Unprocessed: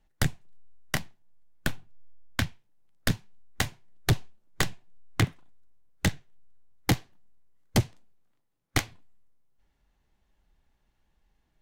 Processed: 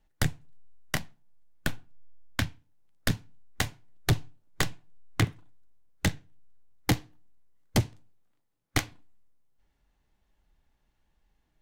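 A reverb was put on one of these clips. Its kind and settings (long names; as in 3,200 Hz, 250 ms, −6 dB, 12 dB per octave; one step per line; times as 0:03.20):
feedback delay network reverb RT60 0.34 s, low-frequency decay 1.2×, high-frequency decay 0.4×, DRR 19.5 dB
level −1 dB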